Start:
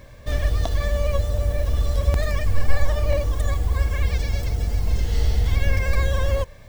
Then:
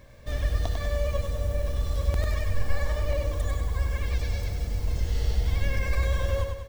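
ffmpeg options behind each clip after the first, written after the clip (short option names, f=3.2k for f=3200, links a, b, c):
-af "aecho=1:1:98|196|294|392|490|588|686:0.562|0.292|0.152|0.0791|0.0411|0.0214|0.0111,volume=-6.5dB"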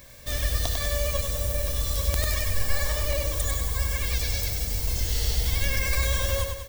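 -af "crystalizer=i=6:c=0,volume=-1dB"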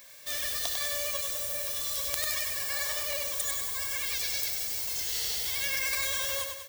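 -af "highpass=f=1.4k:p=1"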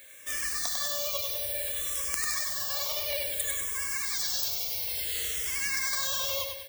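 -filter_complex "[0:a]asplit=2[a][b];[b]afreqshift=-0.58[c];[a][c]amix=inputs=2:normalize=1,volume=3.5dB"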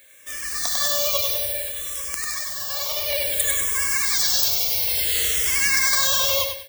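-af "dynaudnorm=f=430:g=3:m=13dB,volume=-1dB"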